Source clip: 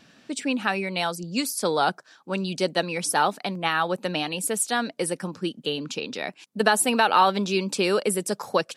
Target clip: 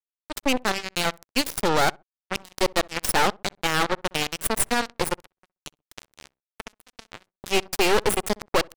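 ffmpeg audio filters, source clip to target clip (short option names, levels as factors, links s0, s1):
-filter_complex "[0:a]highpass=f=200:w=0.5412,highpass=f=200:w=1.3066,asettb=1/sr,asplit=3[s0][s1][s2];[s0]atrim=end=5.354[s3];[s1]atrim=start=5.35:end=7.44,asetpts=PTS-STARTPTS,afade=t=in:d=0.004:c=qsin,afade=t=out:st=2.086:d=0.004:c=qsin,acompressor=threshold=0.0251:ratio=10[s4];[s2]atrim=start=7.436[s5];[s3][s4]acrossfade=d=0.004:c1=hsin:c2=qsin[s6];[s6][s5]acrossfade=d=0.004:c1=qsin:c2=hsin,aeval=exprs='(tanh(8.91*val(0)+0.55)-tanh(0.55))/8.91':c=same,acrusher=bits=3:mix=0:aa=0.5,asplit=2[s7][s8];[s8]adelay=64,lowpass=f=970:p=1,volume=0.0708,asplit=2[s9][s10];[s10]adelay=64,lowpass=f=970:p=1,volume=0.28[s11];[s7][s9][s11]amix=inputs=3:normalize=0,volume=2"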